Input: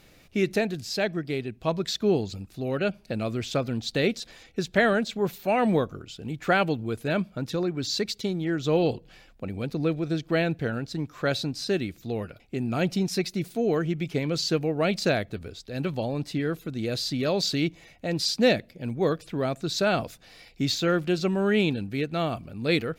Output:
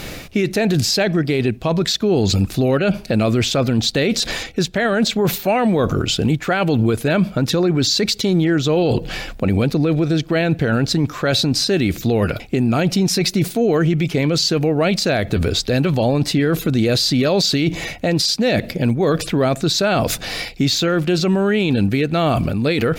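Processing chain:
reversed playback
downward compressor 20 to 1, threshold −33 dBFS, peak gain reduction 19 dB
reversed playback
boost into a limiter +33 dB
level −8 dB

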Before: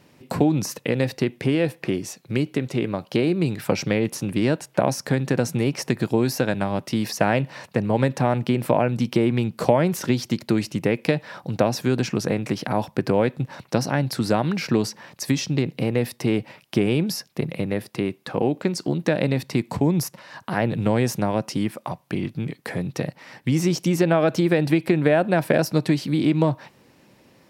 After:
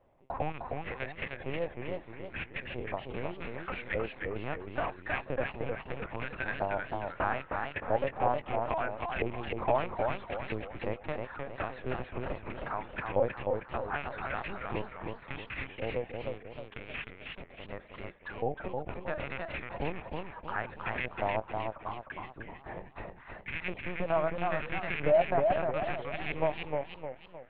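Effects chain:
loose part that buzzes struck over −20 dBFS, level −15 dBFS
auto-filter band-pass saw up 0.76 Hz 620–1,900 Hz
0:16.18–0:17.64: power curve on the samples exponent 1.4
linear-prediction vocoder at 8 kHz pitch kept
feedback echo with a swinging delay time 311 ms, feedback 43%, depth 149 cents, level −4 dB
level −2.5 dB

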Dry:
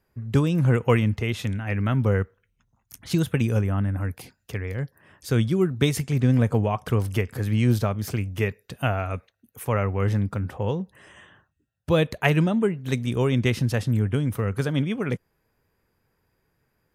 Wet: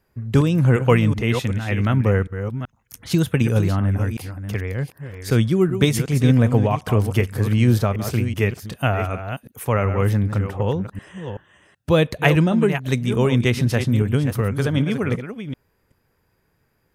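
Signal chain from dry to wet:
delay that plays each chunk backwards 379 ms, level −9 dB
level +4 dB

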